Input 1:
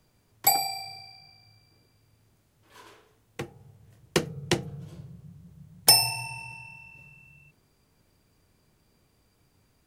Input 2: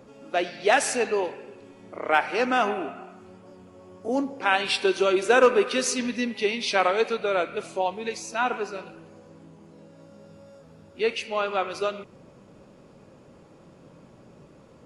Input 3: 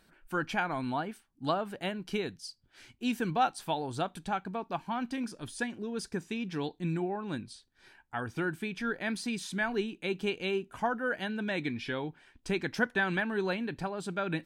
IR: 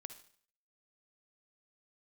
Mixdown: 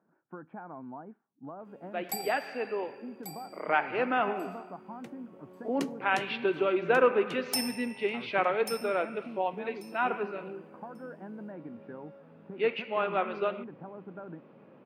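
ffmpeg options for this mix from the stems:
-filter_complex "[0:a]adelay=1650,volume=-15dB,asplit=3[link_01][link_02][link_03];[link_02]volume=-14dB[link_04];[link_03]volume=-8.5dB[link_05];[1:a]lowpass=frequency=2800:width=0.5412,lowpass=frequency=2800:width=1.3066,dynaudnorm=framelen=200:gausssize=13:maxgain=8dB,adelay=1600,volume=-10.5dB[link_06];[2:a]lowpass=frequency=1200:width=0.5412,lowpass=frequency=1200:width=1.3066,alimiter=limit=-24dB:level=0:latency=1:release=323,acompressor=threshold=-35dB:ratio=6,volume=-5dB,asplit=2[link_07][link_08];[link_08]volume=-20.5dB[link_09];[3:a]atrim=start_sample=2205[link_10];[link_04][link_09]amix=inputs=2:normalize=0[link_11];[link_11][link_10]afir=irnorm=-1:irlink=0[link_12];[link_05]aecho=0:1:1139|2278|3417:1|0.16|0.0256[link_13];[link_01][link_06][link_07][link_12][link_13]amix=inputs=5:normalize=0,highpass=frequency=150:width=0.5412,highpass=frequency=150:width=1.3066"

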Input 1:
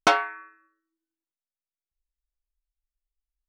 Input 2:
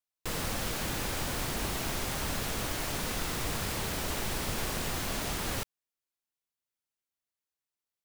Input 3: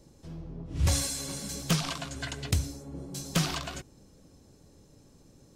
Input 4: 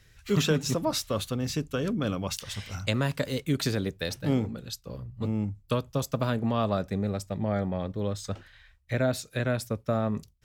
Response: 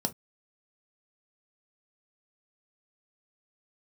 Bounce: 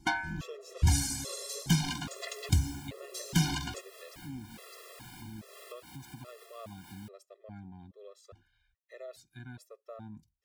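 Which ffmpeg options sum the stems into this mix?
-filter_complex "[0:a]asoftclip=type=tanh:threshold=-11.5dB,volume=-5dB[link_01];[1:a]highpass=frequency=250:poles=1,equalizer=frequency=6100:width_type=o:width=0.29:gain=-6,aeval=exprs='sgn(val(0))*max(abs(val(0))-0.00178,0)':channel_layout=same,adelay=1450,volume=-11dB[link_02];[2:a]volume=1.5dB[link_03];[3:a]volume=-16.5dB,asplit=2[link_04][link_05];[link_05]apad=whole_len=418765[link_06];[link_02][link_06]sidechaincompress=threshold=-47dB:ratio=10:attack=31:release=207[link_07];[link_01][link_07][link_03][link_04]amix=inputs=4:normalize=0,afftfilt=real='re*gt(sin(2*PI*1.2*pts/sr)*(1-2*mod(floor(b*sr/1024/350),2)),0)':imag='im*gt(sin(2*PI*1.2*pts/sr)*(1-2*mod(floor(b*sr/1024/350),2)),0)':win_size=1024:overlap=0.75"

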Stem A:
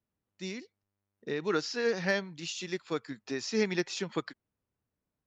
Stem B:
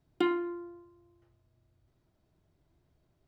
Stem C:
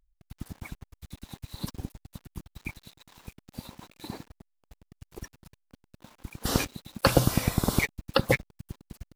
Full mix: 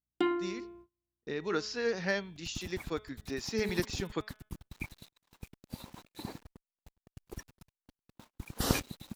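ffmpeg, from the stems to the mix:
ffmpeg -i stem1.wav -i stem2.wav -i stem3.wav -filter_complex "[0:a]bandreject=frequency=213.2:width_type=h:width=4,bandreject=frequency=426.4:width_type=h:width=4,bandreject=frequency=639.6:width_type=h:width=4,bandreject=frequency=852.8:width_type=h:width=4,bandreject=frequency=1066:width_type=h:width=4,bandreject=frequency=1279.2:width_type=h:width=4,bandreject=frequency=1492.4:width_type=h:width=4,bandreject=frequency=1705.6:width_type=h:width=4,bandreject=frequency=1918.8:width_type=h:width=4,bandreject=frequency=2132:width_type=h:width=4,bandreject=frequency=2345.2:width_type=h:width=4,bandreject=frequency=2558.4:width_type=h:width=4,bandreject=frequency=2771.6:width_type=h:width=4,bandreject=frequency=2984.8:width_type=h:width=4,bandreject=frequency=3198:width_type=h:width=4,bandreject=frequency=3411.2:width_type=h:width=4,bandreject=frequency=3624.4:width_type=h:width=4,volume=-2.5dB[link_01];[1:a]aeval=exprs='val(0)+0.000631*(sin(2*PI*60*n/s)+sin(2*PI*2*60*n/s)/2+sin(2*PI*3*60*n/s)/3+sin(2*PI*4*60*n/s)/4+sin(2*PI*5*60*n/s)/5)':channel_layout=same,volume=-1.5dB[link_02];[2:a]adelay=2150,volume=-3dB[link_03];[link_01][link_02][link_03]amix=inputs=3:normalize=0,agate=range=-29dB:threshold=-54dB:ratio=16:detection=peak" out.wav

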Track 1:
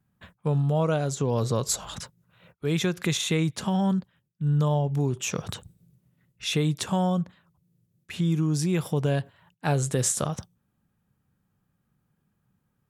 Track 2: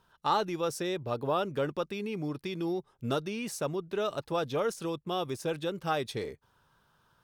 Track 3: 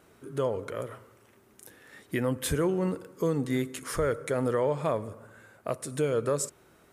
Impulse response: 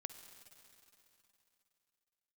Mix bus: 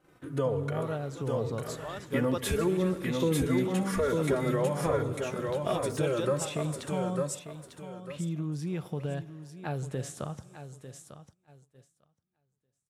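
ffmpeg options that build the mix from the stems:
-filter_complex "[0:a]equalizer=frequency=7300:width_type=o:width=1:gain=-5,bandreject=frequency=1000:width=24,volume=-10dB,asplit=4[link_01][link_02][link_03][link_04];[link_02]volume=-6dB[link_05];[link_03]volume=-11dB[link_06];[1:a]adelay=550,volume=-1.5dB[link_07];[2:a]asplit=2[link_08][link_09];[link_09]adelay=3.4,afreqshift=-0.63[link_10];[link_08][link_10]amix=inputs=2:normalize=1,volume=3dB,asplit=3[link_11][link_12][link_13];[link_12]volume=-3dB[link_14];[link_13]volume=-5dB[link_15];[link_04]apad=whole_len=343286[link_16];[link_07][link_16]sidechaincompress=threshold=-56dB:ratio=8:attack=16:release=208[link_17];[link_01][link_11]amix=inputs=2:normalize=0,lowpass=frequency=2700:poles=1,acompressor=threshold=-31dB:ratio=6,volume=0dB[link_18];[3:a]atrim=start_sample=2205[link_19];[link_05][link_14]amix=inputs=2:normalize=0[link_20];[link_20][link_19]afir=irnorm=-1:irlink=0[link_21];[link_06][link_15]amix=inputs=2:normalize=0,aecho=0:1:898|1796|2694|3592:1|0.28|0.0784|0.022[link_22];[link_17][link_18][link_21][link_22]amix=inputs=4:normalize=0,agate=range=-12dB:threshold=-56dB:ratio=16:detection=peak"

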